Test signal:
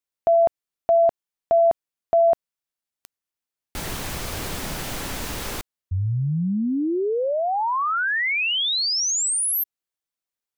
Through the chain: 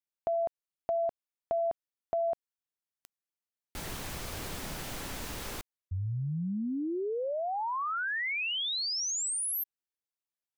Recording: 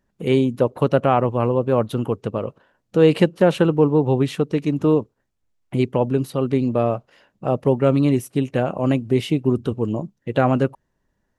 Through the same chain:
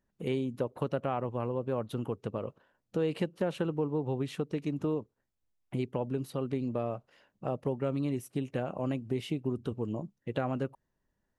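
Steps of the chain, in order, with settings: compressor 2.5:1, threshold -21 dBFS; gain -9 dB

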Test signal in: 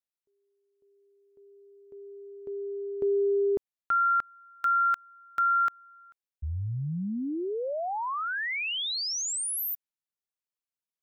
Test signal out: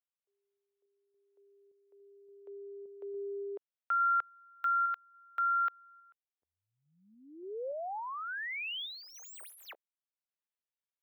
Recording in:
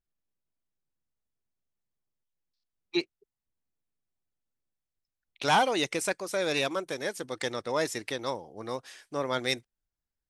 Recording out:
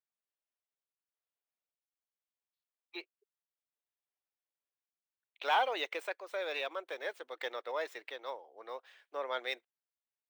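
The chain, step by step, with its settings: median filter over 3 samples; HPF 460 Hz 24 dB/oct; band shelf 7800 Hz -14.5 dB; random-step tremolo 3.5 Hz, depth 55%; gain -3 dB

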